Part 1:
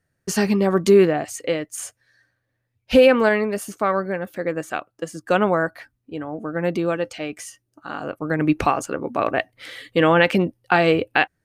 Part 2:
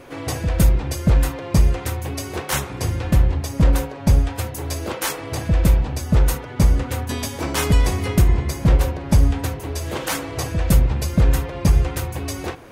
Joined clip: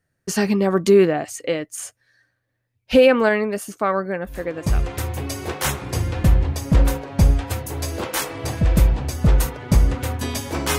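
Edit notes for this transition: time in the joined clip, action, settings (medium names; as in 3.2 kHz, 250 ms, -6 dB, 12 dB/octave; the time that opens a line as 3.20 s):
part 1
4.66 s: go over to part 2 from 1.54 s, crossfade 0.84 s linear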